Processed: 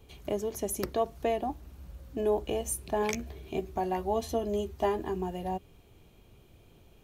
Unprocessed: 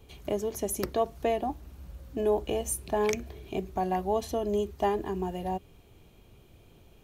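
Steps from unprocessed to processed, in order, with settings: 3.01–5.16 s: doubling 13 ms -7 dB; trim -1.5 dB

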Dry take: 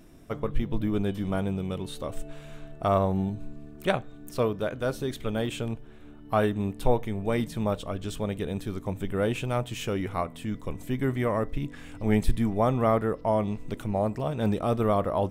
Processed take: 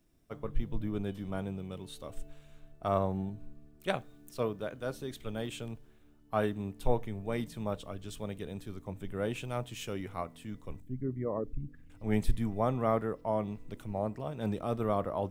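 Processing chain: 10.80–11.90 s: resonances exaggerated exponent 2; bit crusher 11-bit; three bands expanded up and down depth 40%; trim -7.5 dB

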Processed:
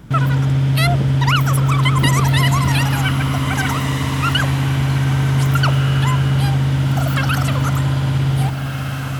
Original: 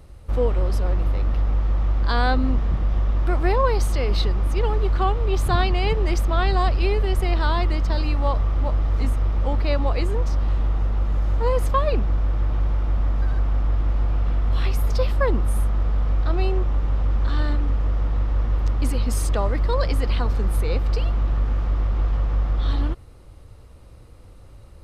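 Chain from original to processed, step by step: wide varispeed 2.7×; on a send: echo that smears into a reverb 1690 ms, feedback 42%, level -6 dB; on the sum: trim +4 dB

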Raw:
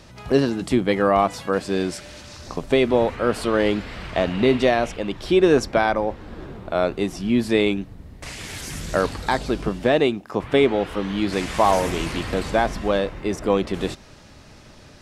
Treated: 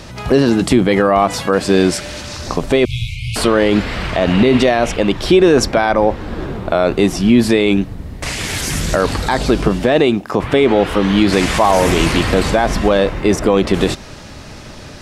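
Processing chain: 2.85–3.36 s: brick-wall FIR band-stop 160–2100 Hz; loudness maximiser +13.5 dB; trim -1 dB

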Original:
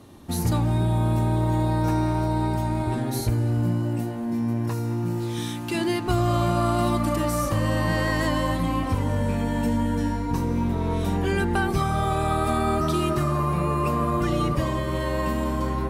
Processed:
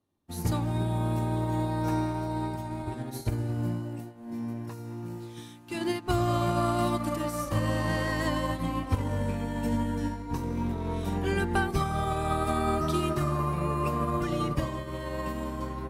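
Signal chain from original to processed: 7.70–8.12 s: CVSD coder 64 kbps; hum notches 60/120/180/240 Hz; upward expansion 2.5:1, over -41 dBFS

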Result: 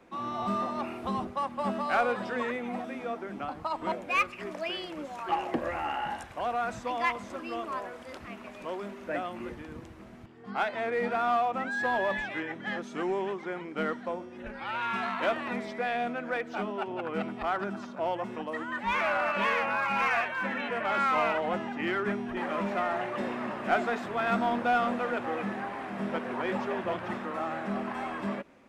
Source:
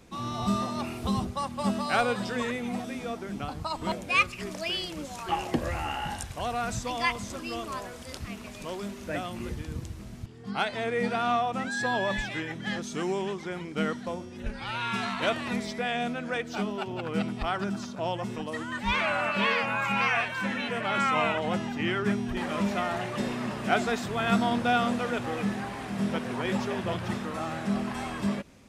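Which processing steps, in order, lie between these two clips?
three-band isolator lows -16 dB, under 250 Hz, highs -16 dB, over 2.5 kHz; band-stop 440 Hz, Q 12; in parallel at -5.5 dB: hard clipper -28 dBFS, distortion -10 dB; on the sum: trim -2 dB

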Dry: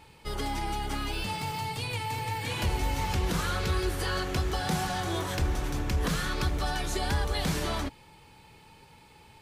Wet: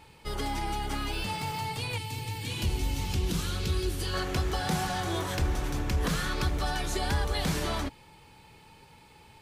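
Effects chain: 1.98–4.14 s: high-order bell 1 kHz -9 dB 2.4 oct

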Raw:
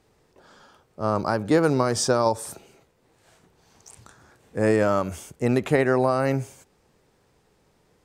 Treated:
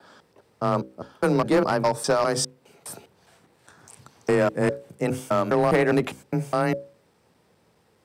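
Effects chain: slices played last to first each 204 ms, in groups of 3; high-pass 56 Hz; peaking EQ 6.7 kHz -7 dB 0.22 oct; hum notches 60/120/180/240/300/360/420/480/540 Hz; frequency shift +20 Hz; hard clipper -15.5 dBFS, distortion -16 dB; trim +1.5 dB

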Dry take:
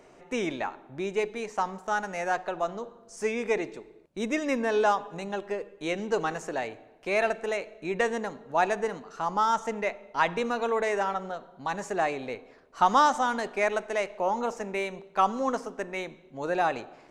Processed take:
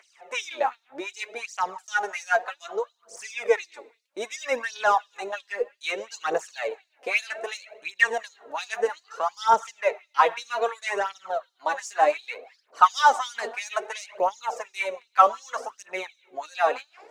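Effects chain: LFO high-pass sine 2.8 Hz 450–5300 Hz; phaser 0.63 Hz, delay 4.5 ms, feedback 62%

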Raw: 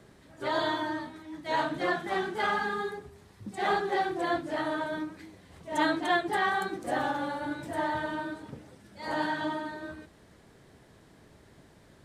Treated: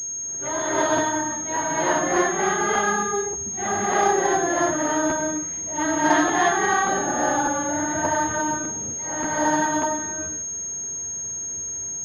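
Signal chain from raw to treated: gated-style reverb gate 380 ms rising, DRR -7.5 dB; crackling interface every 0.59 s, samples 512, repeat, from 0.37 s; class-D stage that switches slowly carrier 6.5 kHz

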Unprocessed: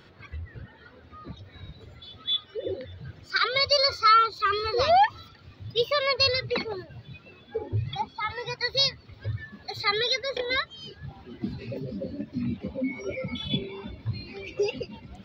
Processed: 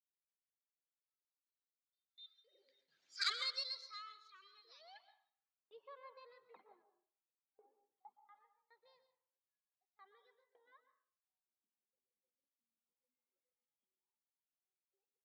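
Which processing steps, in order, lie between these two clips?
Doppler pass-by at 3.29 s, 15 m/s, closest 1.1 m; high-pass 190 Hz 24 dB/octave; treble shelf 4.1 kHz -7.5 dB; in parallel at -9 dB: saturation -26 dBFS, distortion -10 dB; on the sum: gate with hold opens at -57 dBFS; band-pass sweep 7.1 kHz -> 900 Hz, 4.75–5.76 s; on a send at -10.5 dB: reverberation RT60 0.55 s, pre-delay 113 ms; on the sum: trim +5 dB

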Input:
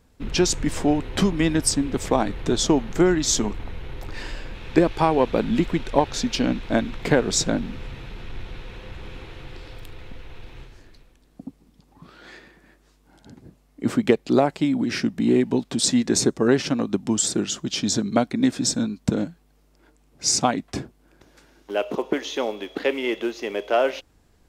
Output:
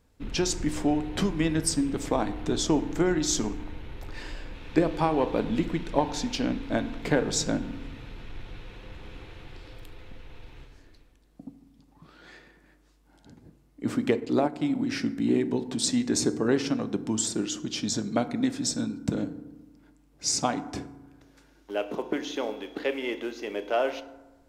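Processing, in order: FDN reverb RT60 1.1 s, low-frequency decay 1.35×, high-frequency decay 0.45×, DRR 10.5 dB; 14.17–14.75 s: transient shaper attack -2 dB, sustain -7 dB; trim -6 dB

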